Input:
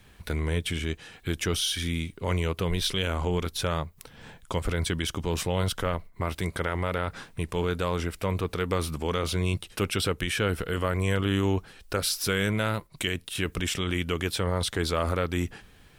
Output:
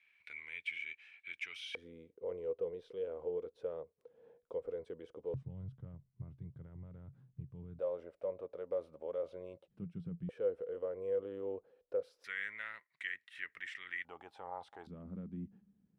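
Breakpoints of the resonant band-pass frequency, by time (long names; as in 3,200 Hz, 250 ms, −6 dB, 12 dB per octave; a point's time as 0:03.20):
resonant band-pass, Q 11
2,300 Hz
from 0:01.75 480 Hz
from 0:05.34 130 Hz
from 0:07.79 550 Hz
from 0:09.68 170 Hz
from 0:10.29 500 Hz
from 0:12.24 1,900 Hz
from 0:14.05 810 Hz
from 0:14.87 200 Hz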